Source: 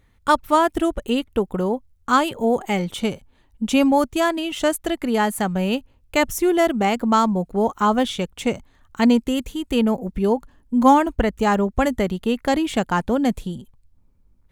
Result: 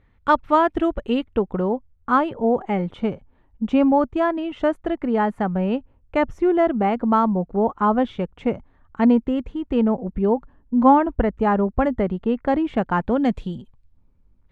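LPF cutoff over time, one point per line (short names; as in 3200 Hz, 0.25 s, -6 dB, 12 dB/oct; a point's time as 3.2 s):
1.29 s 2500 Hz
2.26 s 1500 Hz
12.72 s 1500 Hz
13.4 s 3400 Hz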